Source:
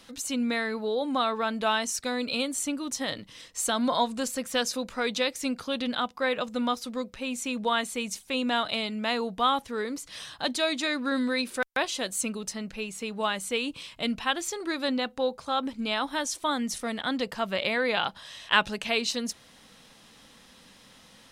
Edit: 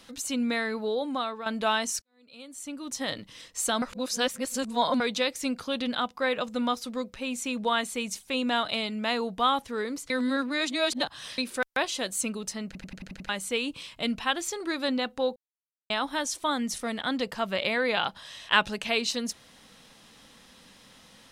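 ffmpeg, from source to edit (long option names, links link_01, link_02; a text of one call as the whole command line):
ffmpeg -i in.wav -filter_complex "[0:a]asplit=16[link_01][link_02][link_03][link_04][link_05][link_06][link_07][link_08][link_09][link_10][link_11][link_12][link_13][link_14][link_15][link_16];[link_01]atrim=end=1.46,asetpts=PTS-STARTPTS,afade=type=out:start_time=0.9:duration=0.56:silence=0.298538[link_17];[link_02]atrim=start=1.46:end=2.02,asetpts=PTS-STARTPTS,afade=type=in:duration=0.004:curve=hsin:silence=0.298538,afade=type=out:start_time=0.556:duration=0.004:curve=hsin[link_18];[link_03]atrim=start=2.02:end=3.822,asetpts=PTS-STARTPTS,afade=type=in:duration=1.05:curve=qua[link_19];[link_04]atrim=start=3.818:end=5.002,asetpts=PTS-STARTPTS,areverse[link_20];[link_05]atrim=start=4.998:end=10.102[link_21];[link_06]atrim=start=10.098:end=11.382,asetpts=PTS-STARTPTS,areverse[link_22];[link_07]atrim=start=11.378:end=12.752[link_23];[link_08]atrim=start=12.658:end=12.752[link_24];[link_09]atrim=start=12.658:end=12.752[link_25];[link_10]atrim=start=12.658:end=12.752[link_26];[link_11]atrim=start=12.658:end=12.752[link_27];[link_12]atrim=start=12.658:end=12.752[link_28];[link_13]atrim=start=12.658:end=12.752[link_29];[link_14]atrim=start=13.288:end=15.36,asetpts=PTS-STARTPTS,afade=type=out:start_time=2.068:duration=0.004:curve=hsin[link_30];[link_15]atrim=start=15.36:end=15.9,asetpts=PTS-STARTPTS,volume=0[link_31];[link_16]atrim=start=15.9,asetpts=PTS-STARTPTS,afade=type=in:duration=0.004:curve=hsin[link_32];[link_17][link_18][link_19]concat=n=3:v=0:a=1[link_33];[link_33][link_20]acrossfade=duration=0.004:curve1=hsin:curve2=hsin[link_34];[link_34][link_21]acrossfade=duration=0.004:curve1=hsin:curve2=hsin[link_35];[link_35][link_22]acrossfade=duration=0.004:curve1=hsin:curve2=hsin[link_36];[link_36][link_23]acrossfade=duration=0.004:curve1=hsin:curve2=hsin[link_37];[link_37][link_24]acrossfade=duration=0.004:curve1=hsin:curve2=hsin[link_38];[link_38][link_25]acrossfade=duration=0.004:curve1=hsin:curve2=hsin[link_39];[link_39][link_26]acrossfade=duration=0.004:curve1=hsin:curve2=hsin[link_40];[link_40][link_27]acrossfade=duration=0.004:curve1=hsin:curve2=hsin[link_41];[link_41][link_28]acrossfade=duration=0.004:curve1=hsin:curve2=hsin[link_42];[link_42][link_29]acrossfade=duration=0.004:curve1=hsin:curve2=hsin[link_43];[link_30][link_31][link_32]concat=n=3:v=0:a=1[link_44];[link_43][link_44]acrossfade=duration=0.004:curve1=hsin:curve2=hsin" out.wav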